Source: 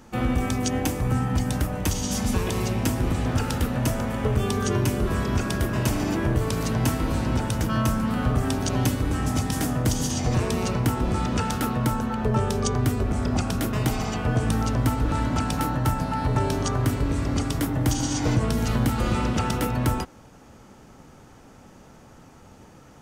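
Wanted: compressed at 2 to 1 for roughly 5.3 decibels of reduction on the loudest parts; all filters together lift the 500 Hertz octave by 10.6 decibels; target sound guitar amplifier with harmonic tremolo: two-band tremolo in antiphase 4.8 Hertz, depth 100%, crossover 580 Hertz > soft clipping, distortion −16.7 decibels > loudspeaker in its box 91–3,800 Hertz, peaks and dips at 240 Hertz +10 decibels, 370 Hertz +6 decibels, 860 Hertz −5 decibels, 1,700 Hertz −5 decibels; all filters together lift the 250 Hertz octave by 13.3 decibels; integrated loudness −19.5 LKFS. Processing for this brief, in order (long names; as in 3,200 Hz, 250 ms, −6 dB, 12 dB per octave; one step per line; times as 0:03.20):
parametric band 250 Hz +5 dB
parametric band 500 Hz +8 dB
downward compressor 2 to 1, threshold −24 dBFS
two-band tremolo in antiphase 4.8 Hz, depth 100%, crossover 580 Hz
soft clipping −21 dBFS
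loudspeaker in its box 91–3,800 Hz, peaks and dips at 240 Hz +10 dB, 370 Hz +6 dB, 860 Hz −5 dB, 1,700 Hz −5 dB
level +7 dB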